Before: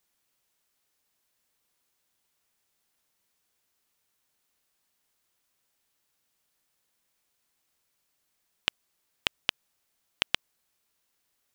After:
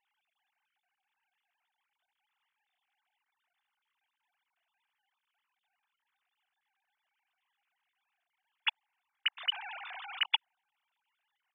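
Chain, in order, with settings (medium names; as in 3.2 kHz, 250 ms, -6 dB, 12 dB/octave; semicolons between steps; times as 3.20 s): formants replaced by sine waves; dynamic bell 870 Hz, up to +5 dB, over -56 dBFS, Q 3; 9.37–10.26 s: level flattener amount 100%; trim -1.5 dB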